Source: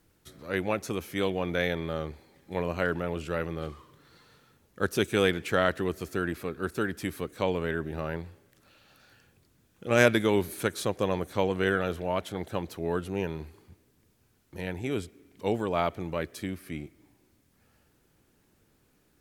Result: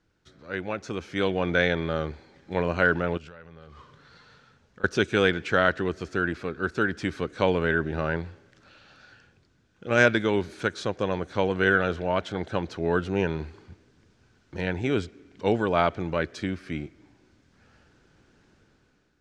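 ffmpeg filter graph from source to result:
-filter_complex "[0:a]asettb=1/sr,asplit=3[s0][s1][s2];[s0]atrim=end=3.174[s3];[s1]atrim=start=3.17:end=4.84,asetpts=PTS-STARTPTS,afade=t=in:d=0.004:c=qsin,afade=t=out:st=1.666:d=0.004:c=qsin,equalizer=f=330:t=o:w=0.3:g=-9.5,acompressor=threshold=0.00501:ratio=16:attack=3.2:release=140:knee=1:detection=peak[s4];[s2]atrim=start=4.836[s5];[s3][s4]acrossfade=d=0.004:c1=hsin:c2=qsin[s6];[s6][s5]acrossfade=d=0.004:c1=qsin:c2=hsin,lowpass=f=6300:w=0.5412,lowpass=f=6300:w=1.3066,equalizer=f=1500:w=7:g=7.5,dynaudnorm=f=740:g=3:m=3.76,volume=0.596"

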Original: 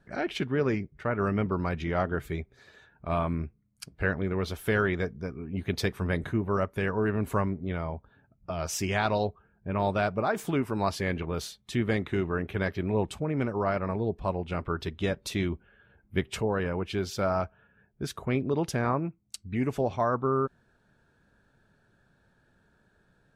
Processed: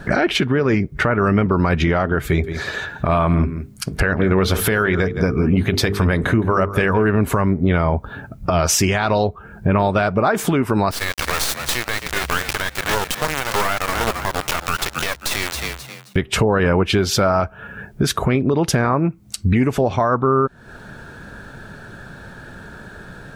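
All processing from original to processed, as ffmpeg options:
-filter_complex "[0:a]asettb=1/sr,asplit=3[s0][s1][s2];[s0]atrim=end=2.274[s3];[s1]atrim=start=2.27:end=7.06,asetpts=PTS-STARTPTS,afade=t=in:d=0.004:c=qsin,afade=t=out:st=4.786:d=0.004:c=qsin,bandreject=f=50:t=h:w=6,bandreject=f=100:t=h:w=6,bandreject=f=150:t=h:w=6,bandreject=f=200:t=h:w=6,bandreject=f=250:t=h:w=6,bandreject=f=300:t=h:w=6,bandreject=f=350:t=h:w=6,bandreject=f=400:t=h:w=6,bandreject=f=450:t=h:w=6,aecho=1:1:166:0.119,atrim=end_sample=211239[s4];[s2]atrim=start=7.056[s5];[s3][s4]acrossfade=d=0.004:c1=hsin:c2=qsin[s6];[s6][s5]acrossfade=d=0.004:c1=qsin:c2=hsin,asettb=1/sr,asplit=3[s7][s8][s9];[s7]atrim=end=10.914[s10];[s8]atrim=start=10.91:end=16.16,asetpts=PTS-STARTPTS,afade=t=in:d=0.004:c=qsin,afade=t=out:st=5.246:d=0.004:c=qsin,highpass=1000,acrusher=bits=4:dc=4:mix=0:aa=0.000001,asplit=4[s11][s12][s13][s14];[s12]adelay=265,afreqshift=64,volume=0.2[s15];[s13]adelay=530,afreqshift=128,volume=0.0596[s16];[s14]adelay=795,afreqshift=192,volume=0.018[s17];[s11][s15][s16][s17]amix=inputs=4:normalize=0,atrim=end_sample=231525[s18];[s9]atrim=start=16.156[s19];[s10][s18]acrossfade=d=0.004:c1=hsin:c2=qsin[s20];[s20][s19]acrossfade=d=0.004:c1=qsin:c2=hsin,acompressor=threshold=0.01:ratio=12,equalizer=f=1400:t=o:w=0.77:g=2.5,alimiter=level_in=53.1:limit=0.891:release=50:level=0:latency=1,volume=0.473"

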